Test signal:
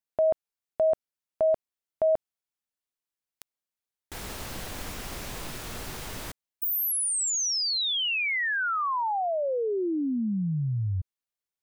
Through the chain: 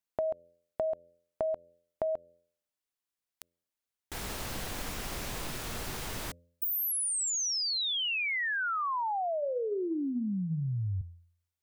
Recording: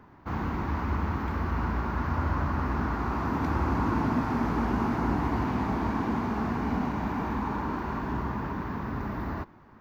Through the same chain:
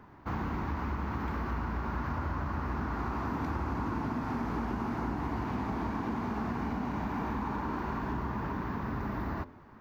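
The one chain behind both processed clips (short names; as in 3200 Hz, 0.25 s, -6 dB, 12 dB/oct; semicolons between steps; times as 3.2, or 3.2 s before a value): de-hum 85.8 Hz, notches 7; compressor 6:1, threshold -30 dBFS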